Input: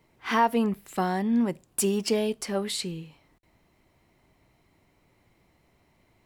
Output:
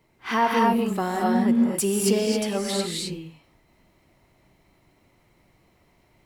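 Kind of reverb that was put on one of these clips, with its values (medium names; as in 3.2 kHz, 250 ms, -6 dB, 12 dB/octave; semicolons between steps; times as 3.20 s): gated-style reverb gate 290 ms rising, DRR -1.5 dB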